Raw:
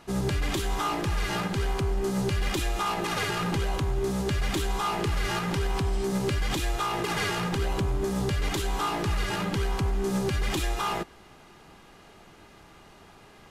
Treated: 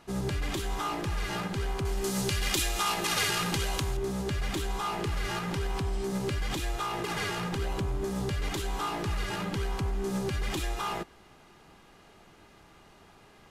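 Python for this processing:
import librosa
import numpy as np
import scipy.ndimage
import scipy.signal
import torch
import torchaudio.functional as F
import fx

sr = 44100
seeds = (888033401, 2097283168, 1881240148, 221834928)

y = fx.high_shelf(x, sr, hz=2300.0, db=12.0, at=(1.85, 3.97))
y = y * librosa.db_to_amplitude(-4.0)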